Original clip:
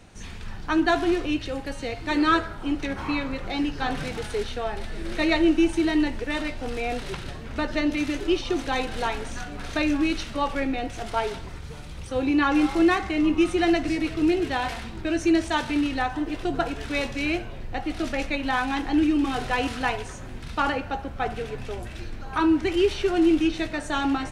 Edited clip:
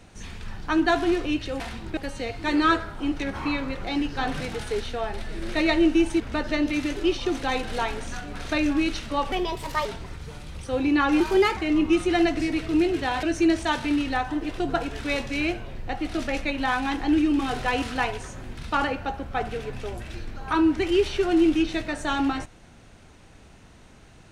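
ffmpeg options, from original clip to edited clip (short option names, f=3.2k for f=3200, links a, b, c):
-filter_complex "[0:a]asplit=9[a][b][c][d][e][f][g][h][i];[a]atrim=end=1.602[j];[b]atrim=start=14.708:end=15.082[k];[c]atrim=start=1.598:end=5.832[l];[d]atrim=start=7.438:end=10.564[m];[e]atrim=start=10.56:end=11.28,asetpts=PTS-STARTPTS,asetrate=59535,aresample=44100[n];[f]atrim=start=11.276:end=12.634[o];[g]atrim=start=12.63:end=13.05,asetpts=PTS-STARTPTS,asetrate=50715,aresample=44100,atrim=end_sample=16106,asetpts=PTS-STARTPTS[p];[h]atrim=start=13.046:end=14.712[q];[i]atrim=start=15.078[r];[j][k]acrossfade=d=0.004:c1=hsin:c2=hsin[s];[s][l]acrossfade=d=0.004:c1=hsin:c2=hsin[t];[t][m]acrossfade=d=0.004:c1=hsin:c2=hsin[u];[u][n]acrossfade=d=0.004:c1=hsin:c2=hsin[v];[v][o]acrossfade=d=0.004:c1=hsin:c2=hsin[w];[w][p]acrossfade=d=0.004:c1=hsin:c2=hsin[x];[x][q]acrossfade=d=0.004:c1=hsin:c2=hsin[y];[y][r]acrossfade=d=0.004:c1=hsin:c2=hsin"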